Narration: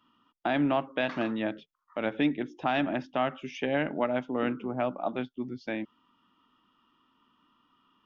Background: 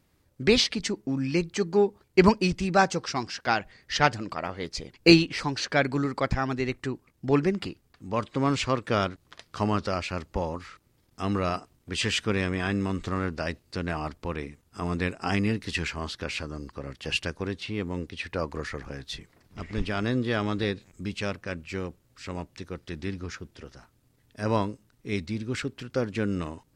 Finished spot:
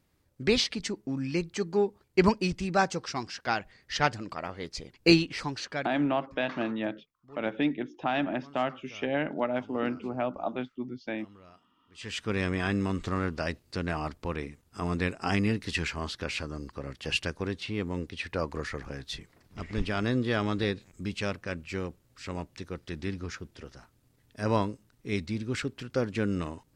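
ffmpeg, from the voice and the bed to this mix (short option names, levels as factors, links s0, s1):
-filter_complex "[0:a]adelay=5400,volume=0.891[s0];[1:a]volume=12.6,afade=t=out:st=5.44:d=0.62:silence=0.0707946,afade=t=in:st=11.94:d=0.54:silence=0.0501187[s1];[s0][s1]amix=inputs=2:normalize=0"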